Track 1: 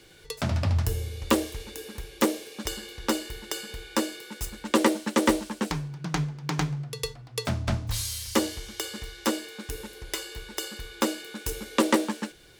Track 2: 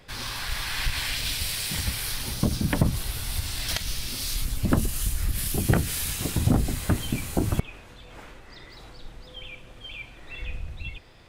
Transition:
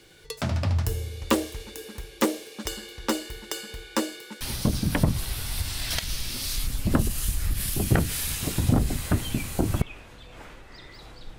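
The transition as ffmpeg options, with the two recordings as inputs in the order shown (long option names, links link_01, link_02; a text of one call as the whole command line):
ffmpeg -i cue0.wav -i cue1.wav -filter_complex "[0:a]apad=whole_dur=11.38,atrim=end=11.38,atrim=end=4.412[link_01];[1:a]atrim=start=2.188:end=9.16[link_02];[link_01][link_02]acrossfade=duration=0.004:curve1=hsin:curve2=hsin" out.wav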